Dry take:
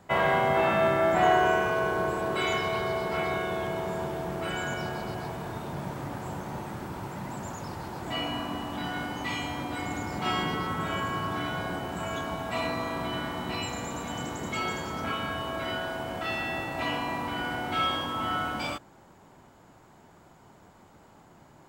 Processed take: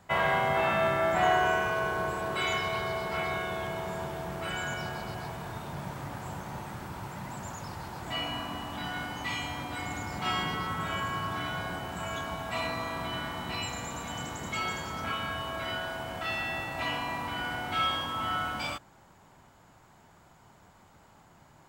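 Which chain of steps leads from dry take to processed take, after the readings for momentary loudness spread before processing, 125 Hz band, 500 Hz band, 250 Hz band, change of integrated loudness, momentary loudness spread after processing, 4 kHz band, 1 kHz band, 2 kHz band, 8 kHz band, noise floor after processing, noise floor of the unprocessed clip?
13 LU, -2.0 dB, -4.0 dB, -5.5 dB, -2.0 dB, 13 LU, 0.0 dB, -2.0 dB, -0.5 dB, 0.0 dB, -58 dBFS, -56 dBFS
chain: peaking EQ 340 Hz -7 dB 1.9 oct

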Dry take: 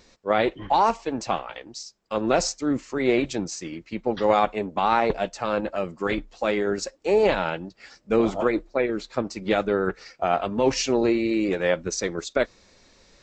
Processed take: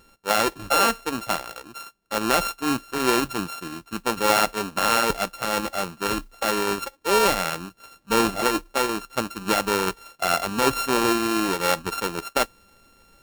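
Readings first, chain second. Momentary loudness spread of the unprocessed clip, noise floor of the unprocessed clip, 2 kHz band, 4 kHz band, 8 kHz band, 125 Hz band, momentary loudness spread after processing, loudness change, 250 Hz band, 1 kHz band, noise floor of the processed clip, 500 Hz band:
9 LU, -58 dBFS, +4.5 dB, +7.0 dB, +5.5 dB, -1.0 dB, 9 LU, +1.0 dB, -1.5 dB, +1.5 dB, -58 dBFS, -3.0 dB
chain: sorted samples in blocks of 32 samples; modulation noise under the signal 24 dB

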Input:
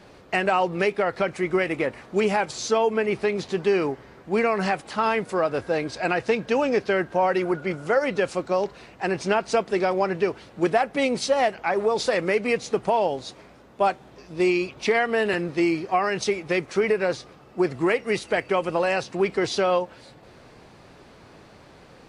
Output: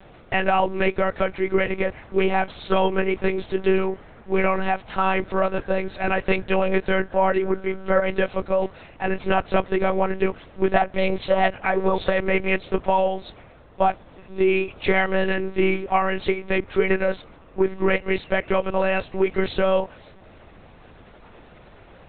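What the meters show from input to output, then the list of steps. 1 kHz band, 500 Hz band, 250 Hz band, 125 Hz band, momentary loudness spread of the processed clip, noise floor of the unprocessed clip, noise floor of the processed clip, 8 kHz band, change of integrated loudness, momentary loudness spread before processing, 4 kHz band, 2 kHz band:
+1.5 dB, +1.0 dB, +1.0 dB, +4.0 dB, 5 LU, -50 dBFS, -48 dBFS, under -40 dB, +1.0 dB, 5 LU, -1.0 dB, +1.5 dB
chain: monotone LPC vocoder at 8 kHz 190 Hz; trim +2 dB

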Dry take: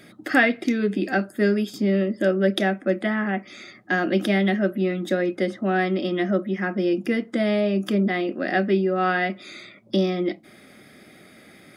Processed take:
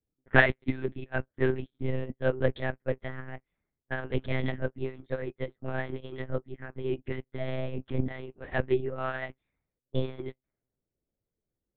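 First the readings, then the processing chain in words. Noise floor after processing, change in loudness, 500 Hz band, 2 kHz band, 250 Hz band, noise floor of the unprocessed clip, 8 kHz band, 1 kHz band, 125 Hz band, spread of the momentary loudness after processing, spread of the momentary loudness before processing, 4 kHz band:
under -85 dBFS, -9.0 dB, -8.5 dB, -6.5 dB, -14.0 dB, -50 dBFS, no reading, -10.5 dB, -4.0 dB, 10 LU, 6 LU, -12.0 dB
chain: monotone LPC vocoder at 8 kHz 130 Hz; level-controlled noise filter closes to 530 Hz, open at -20 dBFS; upward expansion 2.5:1, over -39 dBFS

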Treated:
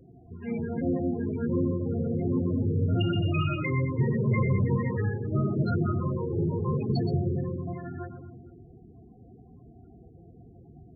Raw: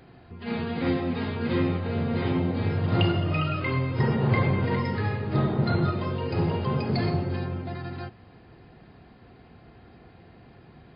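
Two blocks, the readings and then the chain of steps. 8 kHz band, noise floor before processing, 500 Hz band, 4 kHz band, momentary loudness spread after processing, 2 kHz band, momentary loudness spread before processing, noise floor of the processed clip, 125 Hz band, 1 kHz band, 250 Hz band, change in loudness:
no reading, -52 dBFS, -2.0 dB, -7.0 dB, 11 LU, -6.0 dB, 9 LU, -53 dBFS, -1.0 dB, -6.5 dB, -1.0 dB, -1.5 dB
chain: saturation -18 dBFS, distortion -18 dB; two-band feedback delay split 530 Hz, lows 224 ms, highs 123 ms, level -7 dB; loudest bins only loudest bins 16; peaking EQ 850 Hz -10 dB 0.25 oct

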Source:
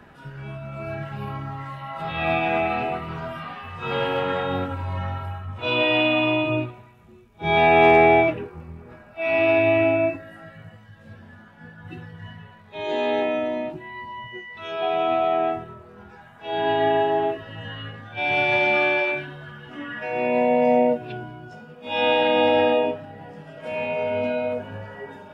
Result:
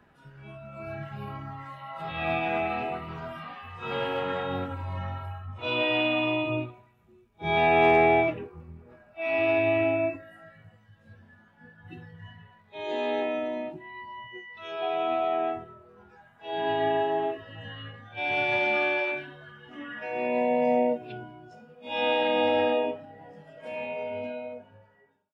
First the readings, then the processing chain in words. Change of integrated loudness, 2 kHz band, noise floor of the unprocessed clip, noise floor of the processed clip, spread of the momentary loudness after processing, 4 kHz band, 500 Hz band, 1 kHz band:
-5.5 dB, -5.5 dB, -48 dBFS, -60 dBFS, 19 LU, -5.5 dB, -5.5 dB, -5.5 dB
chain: fade out at the end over 1.84 s; spectral noise reduction 6 dB; trim -5.5 dB

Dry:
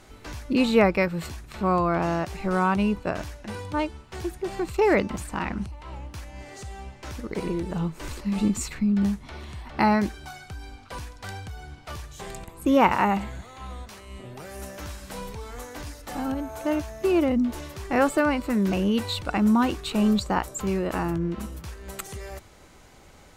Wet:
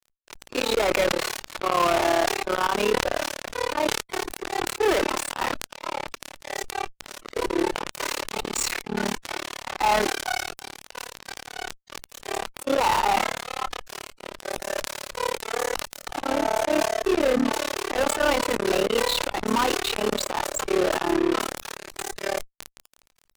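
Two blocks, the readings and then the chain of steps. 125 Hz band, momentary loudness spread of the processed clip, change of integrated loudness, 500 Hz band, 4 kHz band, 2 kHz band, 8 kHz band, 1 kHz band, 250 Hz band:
-11.0 dB, 14 LU, -0.5 dB, +2.5 dB, +8.5 dB, +4.0 dB, +9.0 dB, +2.5 dB, -6.0 dB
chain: AM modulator 36 Hz, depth 90%; low-pass 9.1 kHz; slow attack 136 ms; high-pass 390 Hz 24 dB/octave; fuzz box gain 42 dB, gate -47 dBFS; harmonic-percussive split harmonic +7 dB; decay stretcher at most 57 dB/s; trim -10 dB

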